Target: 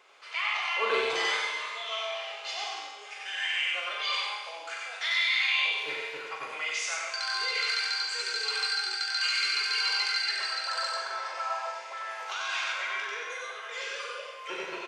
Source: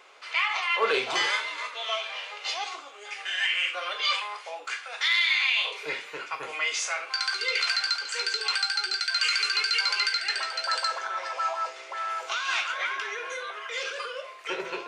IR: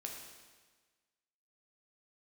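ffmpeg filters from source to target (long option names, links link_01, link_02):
-filter_complex "[0:a]highpass=71,asplit=2[link_01][link_02];[link_02]adelay=42,volume=-7dB[link_03];[link_01][link_03]amix=inputs=2:normalize=0,asplit=2[link_04][link_05];[1:a]atrim=start_sample=2205,lowshelf=frequency=460:gain=-6,adelay=93[link_06];[link_05][link_06]afir=irnorm=-1:irlink=0,volume=2.5dB[link_07];[link_04][link_07]amix=inputs=2:normalize=0,volume=-6.5dB"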